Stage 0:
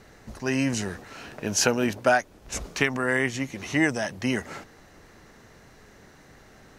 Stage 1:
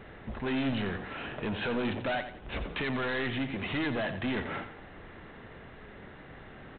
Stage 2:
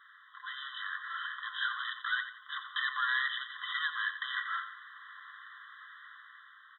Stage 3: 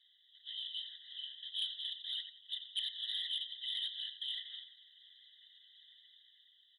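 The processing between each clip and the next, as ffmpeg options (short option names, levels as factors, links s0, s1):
-af "alimiter=limit=0.158:level=0:latency=1,aresample=8000,asoftclip=type=tanh:threshold=0.0251,aresample=44100,aecho=1:1:88|176|264|352:0.299|0.102|0.0345|0.0117,volume=1.5"
-af "dynaudnorm=f=220:g=7:m=2.24,afftfilt=real='re*eq(mod(floor(b*sr/1024/1000),2),1)':imag='im*eq(mod(floor(b*sr/1024/1000),2),1)':win_size=1024:overlap=0.75,volume=0.794"
-af "asuperpass=centerf=3300:order=12:qfactor=1.4,afftfilt=real='hypot(re,im)*cos(2*PI*random(0))':imag='hypot(re,im)*sin(2*PI*random(1))':win_size=512:overlap=0.75,aeval=exprs='0.0282*sin(PI/2*1.58*val(0)/0.0282)':c=same,volume=1.19"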